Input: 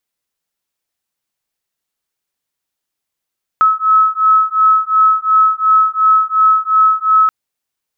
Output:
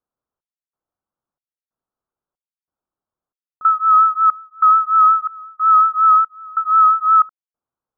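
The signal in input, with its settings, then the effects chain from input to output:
beating tones 1290 Hz, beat 2.8 Hz, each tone -11.5 dBFS 3.68 s
steep low-pass 1400 Hz 48 dB/oct; vibrato 5.5 Hz 33 cents; step gate "xxxxx....xxx" 185 bpm -24 dB

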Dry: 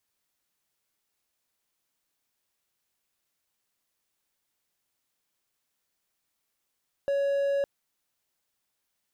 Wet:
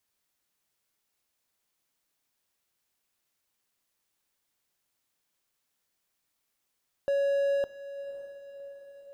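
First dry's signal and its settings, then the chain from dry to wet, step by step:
tone triangle 559 Hz -21.5 dBFS 0.56 s
diffused feedback echo 0.553 s, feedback 54%, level -13.5 dB

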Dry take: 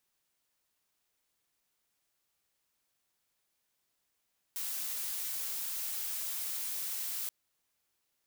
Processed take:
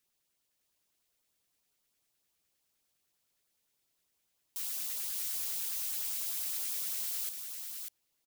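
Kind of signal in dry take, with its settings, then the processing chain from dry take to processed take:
noise blue, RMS -37 dBFS 2.73 s
LFO notch saw up 9.8 Hz 680–2400 Hz; on a send: echo 0.594 s -5 dB

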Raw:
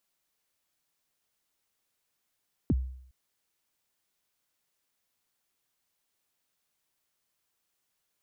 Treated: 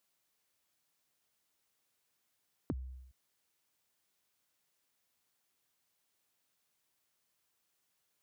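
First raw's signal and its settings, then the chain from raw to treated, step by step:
kick drum length 0.41 s, from 350 Hz, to 64 Hz, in 36 ms, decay 0.66 s, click off, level -19.5 dB
HPF 55 Hz; compressor 6:1, threshold -37 dBFS

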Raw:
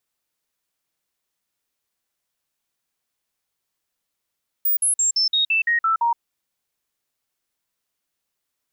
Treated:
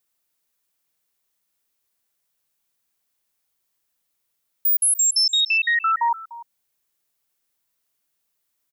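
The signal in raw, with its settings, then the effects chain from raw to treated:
stepped sine 15000 Hz down, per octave 2, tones 9, 0.12 s, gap 0.05 s -16 dBFS
high shelf 9500 Hz +8 dB; limiter -14.5 dBFS; echo 0.297 s -17.5 dB

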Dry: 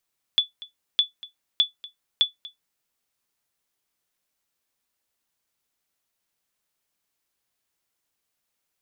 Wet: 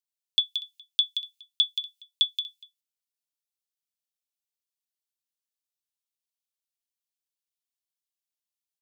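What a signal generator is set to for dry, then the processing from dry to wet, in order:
sonar ping 3450 Hz, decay 0.14 s, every 0.61 s, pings 4, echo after 0.24 s, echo -20 dB -10 dBFS
gate -59 dBFS, range -13 dB; inverse Chebyshev high-pass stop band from 840 Hz, stop band 60 dB; on a send: echo 0.176 s -8 dB

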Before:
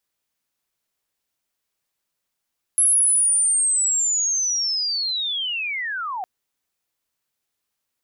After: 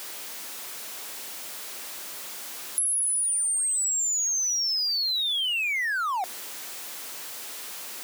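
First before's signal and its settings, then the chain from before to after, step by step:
chirp linear 11000 Hz -> 710 Hz -13.5 dBFS -> -25.5 dBFS 3.46 s
zero-crossing step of -31.5 dBFS; HPF 260 Hz 12 dB/oct; compressor 6:1, threshold -25 dBFS

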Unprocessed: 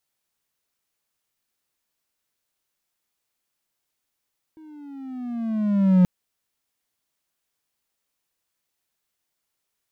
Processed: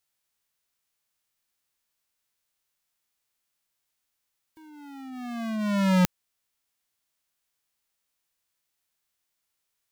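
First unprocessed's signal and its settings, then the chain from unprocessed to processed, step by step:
gliding synth tone triangle, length 1.48 s, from 319 Hz, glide -10 st, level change +32 dB, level -9 dB
spectral whitening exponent 0.6; bell 300 Hz -5 dB 2.9 oct

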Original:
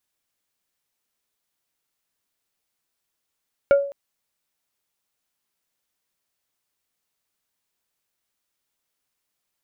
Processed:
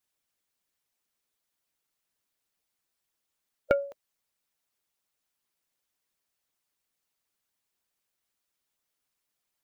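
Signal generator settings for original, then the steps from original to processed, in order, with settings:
wood hit plate, length 0.21 s, lowest mode 561 Hz, decay 0.49 s, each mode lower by 10.5 dB, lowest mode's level -9 dB
harmonic-percussive split harmonic -9 dB

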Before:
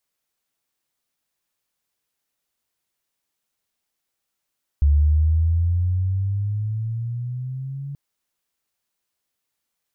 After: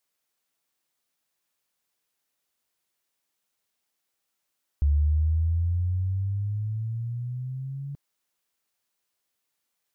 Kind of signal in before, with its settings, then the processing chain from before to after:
gliding synth tone sine, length 3.13 s, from 71.2 Hz, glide +12 st, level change -16.5 dB, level -12 dB
low shelf 140 Hz -7 dB

